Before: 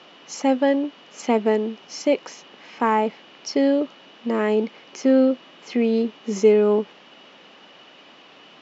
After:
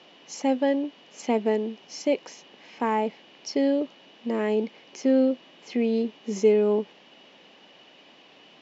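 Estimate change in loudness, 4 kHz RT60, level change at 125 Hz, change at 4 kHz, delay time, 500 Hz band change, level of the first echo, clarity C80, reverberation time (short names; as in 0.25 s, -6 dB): -4.5 dB, none, n/a, -4.0 dB, none, -4.0 dB, none, none, none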